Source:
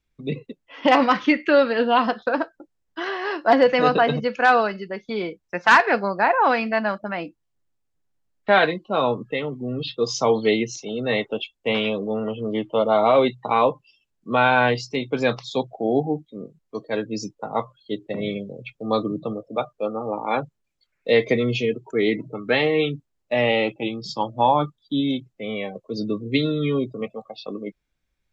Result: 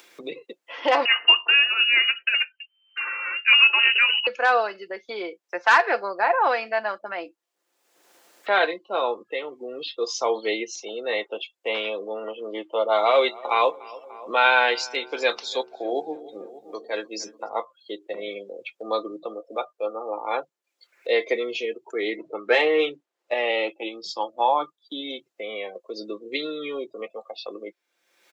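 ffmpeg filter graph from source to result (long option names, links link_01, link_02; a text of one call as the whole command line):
ffmpeg -i in.wav -filter_complex "[0:a]asettb=1/sr,asplit=3[link_01][link_02][link_03];[link_01]atrim=end=1.054[link_04];[link_02]atrim=start=1.05:end=4.27,asetpts=PTS-STARTPTS,afade=type=in:duration=0.004:curve=qsin,afade=type=out:start_time=3.216:duration=0.004:curve=qsin,equalizer=frequency=250:width=2.8:gain=10,lowpass=frequency=2600:width_type=q:width=0.5098,lowpass=frequency=2600:width_type=q:width=0.6013,lowpass=frequency=2600:width_type=q:width=0.9,lowpass=frequency=2600:width_type=q:width=2.563,afreqshift=-3100[link_05];[link_03]atrim=start=4.266[link_06];[link_04][link_05]acrossfade=duration=0.004:curve1=hsin:curve2=qsin[link_07];[link_07][link_06]acrossfade=duration=0.004:curve1=qsin:curve2=hsin,asettb=1/sr,asplit=3[link_08][link_09][link_10];[link_08]atrim=end=12.864[link_11];[link_09]atrim=start=12.86:end=17.49,asetpts=PTS-STARTPTS,afade=type=in:duration=0.004:curve=qsin,afade=type=out:start_time=4.626:duration=0.004:curve=qsin,bandreject=frequency=74.65:width_type=h:width=4,bandreject=frequency=149.3:width_type=h:width=4,bandreject=frequency=223.95:width_type=h:width=4,bandreject=frequency=298.6:width_type=h:width=4,bandreject=frequency=373.25:width_type=h:width=4,bandreject=frequency=447.9:width_type=h:width=4,asplit=2[link_12][link_13];[link_13]adelay=294,lowpass=frequency=2000:poles=1,volume=-20.5dB,asplit=2[link_14][link_15];[link_15]adelay=294,lowpass=frequency=2000:poles=1,volume=0.5,asplit=2[link_16][link_17];[link_17]adelay=294,lowpass=frequency=2000:poles=1,volume=0.5,asplit=2[link_18][link_19];[link_19]adelay=294,lowpass=frequency=2000:poles=1,volume=0.5[link_20];[link_12][link_14][link_16][link_18][link_20]amix=inputs=5:normalize=0,atrim=end_sample=204183,adynamicequalizer=threshold=0.0224:dfrequency=1500:dqfactor=0.7:tfrequency=1500:tqfactor=0.7:attack=5:release=100:ratio=0.375:range=4:mode=boostabove:tftype=highshelf[link_21];[link_10]atrim=start=17.486[link_22];[link_11][link_21]acrossfade=duration=0.004:curve1=hsin:curve2=qsin[link_23];[link_23][link_22]acrossfade=duration=0.004:curve1=qsin:curve2=hsin,asettb=1/sr,asplit=3[link_24][link_25][link_26];[link_24]atrim=end=22.174[link_27];[link_25]atrim=start=22.17:end=23.34,asetpts=PTS-STARTPTS,afade=type=in:duration=0.004:curve=qsin,afade=type=out:start_time=1.166:duration=0.004:curve=qsin,lowpass=frequency=3200:poles=1,bandreject=frequency=270:width=8.4,acontrast=40[link_28];[link_26]atrim=start=23.336[link_29];[link_27][link_28]acrossfade=duration=0.004:curve1=hsin:curve2=qsin[link_30];[link_30][link_29]acrossfade=duration=0.004:curve1=qsin:curve2=hsin,highpass=frequency=370:width=0.5412,highpass=frequency=370:width=1.3066,aecho=1:1:5.8:0.33,acompressor=mode=upward:threshold=-26dB:ratio=2.5,volume=-3dB" out.wav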